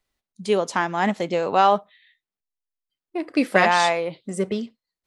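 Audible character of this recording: noise floor -92 dBFS; spectral tilt -3.0 dB/octave

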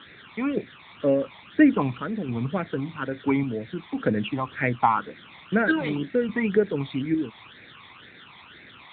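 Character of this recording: random-step tremolo, depth 65%; a quantiser's noise floor 8-bit, dither triangular; phasing stages 12, 2 Hz, lowest notch 480–1000 Hz; AMR-NB

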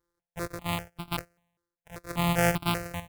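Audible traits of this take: a buzz of ramps at a fixed pitch in blocks of 256 samples; chopped level 0.95 Hz, depth 60%, duty 85%; notches that jump at a steady rate 5.1 Hz 720–1800 Hz

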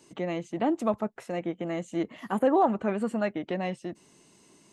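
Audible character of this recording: noise floor -60 dBFS; spectral tilt -3.5 dB/octave

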